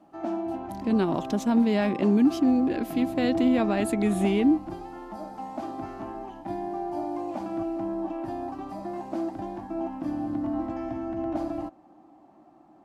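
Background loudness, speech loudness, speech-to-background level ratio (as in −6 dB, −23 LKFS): −33.0 LKFS, −24.5 LKFS, 8.5 dB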